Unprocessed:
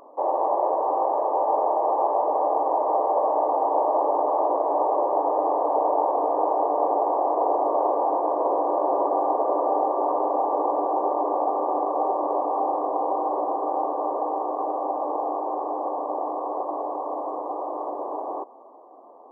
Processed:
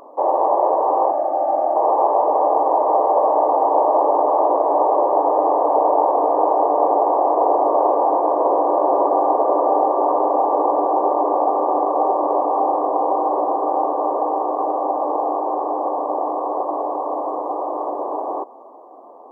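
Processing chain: 1.11–1.76 fixed phaser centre 670 Hz, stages 8; gain +6 dB

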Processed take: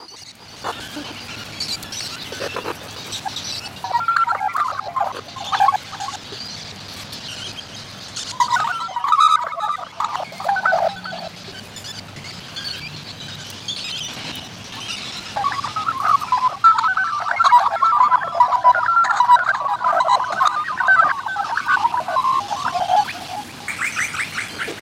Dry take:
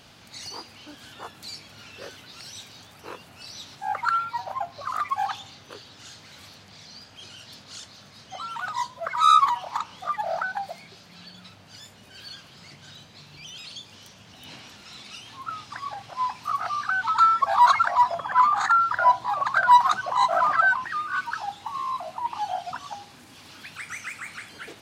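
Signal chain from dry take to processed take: slices in reverse order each 80 ms, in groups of 8; echo 0.399 s -14.5 dB; AGC gain up to 16 dB; gain -2 dB

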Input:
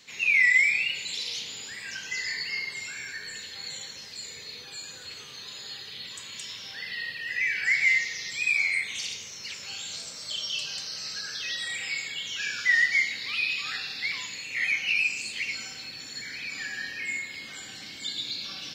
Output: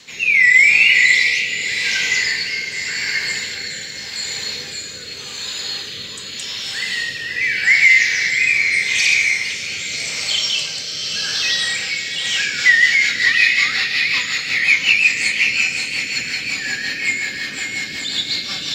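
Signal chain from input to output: diffused feedback echo 0.601 s, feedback 42%, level -4 dB; rotary speaker horn 0.85 Hz, later 5.5 Hz, at 12.01; maximiser +14.5 dB; gain -1 dB

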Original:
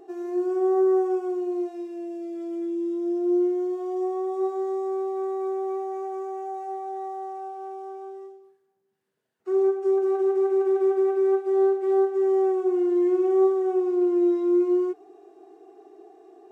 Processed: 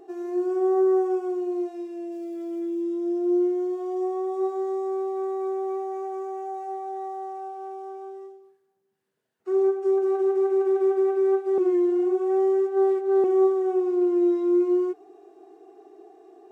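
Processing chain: 2.12–2.82 sample gate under -53.5 dBFS; 11.58–13.24 reverse

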